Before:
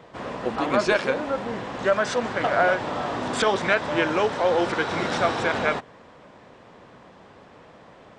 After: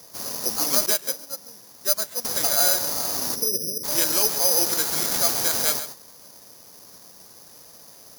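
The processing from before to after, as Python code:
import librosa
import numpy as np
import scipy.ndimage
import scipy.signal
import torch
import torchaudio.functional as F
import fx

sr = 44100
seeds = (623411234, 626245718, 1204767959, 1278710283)

p1 = fx.cheby1_lowpass(x, sr, hz=550.0, order=8, at=(3.34, 3.83), fade=0.02)
p2 = 10.0 ** (-11.0 / 20.0) * np.tanh(p1 / 10.0 ** (-11.0 / 20.0))
p3 = p2 + fx.echo_single(p2, sr, ms=134, db=-11.0, dry=0)
p4 = (np.kron(p3[::8], np.eye(8)[0]) * 8)[:len(p3)]
p5 = fx.upward_expand(p4, sr, threshold_db=-20.0, expansion=2.5, at=(0.86, 2.25))
y = F.gain(torch.from_numpy(p5), -7.5).numpy()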